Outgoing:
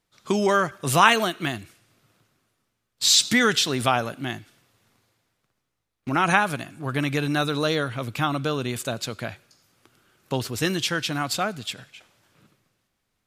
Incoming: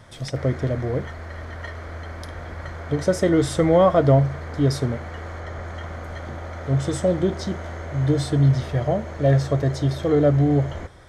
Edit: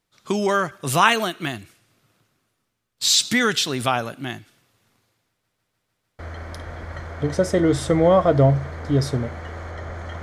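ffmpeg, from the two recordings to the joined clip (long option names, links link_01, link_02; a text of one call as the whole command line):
ffmpeg -i cue0.wav -i cue1.wav -filter_complex "[0:a]apad=whole_dur=10.22,atrim=end=10.22,asplit=6[link_01][link_02][link_03][link_04][link_05][link_06];[link_01]atrim=end=5.442[link_07];[link_02]atrim=start=5.288:end=5.442[link_08];[link_03]atrim=start=5.288:end=5.442[link_09];[link_04]atrim=start=5.288:end=5.442[link_10];[link_05]atrim=start=5.288:end=5.442[link_11];[link_06]atrim=start=5.288:end=5.442[link_12];[1:a]atrim=start=1.878:end=5.91[link_13];[link_07][link_08]acrossfade=duration=0.004:curve1=hsin:curve2=hsin[link_14];[link_14][link_09]acrossfade=duration=0.004:curve1=hsin:curve2=hsin[link_15];[link_15][link_10]acrossfade=duration=0.004:curve1=hsin:curve2=hsin[link_16];[link_16][link_11]acrossfade=duration=0.004:curve1=hsin:curve2=hsin[link_17];[link_17][link_12]acrossfade=duration=0.004:curve1=hsin:curve2=hsin[link_18];[link_18][link_13]acrossfade=duration=0.004:curve1=hsin:curve2=hsin" out.wav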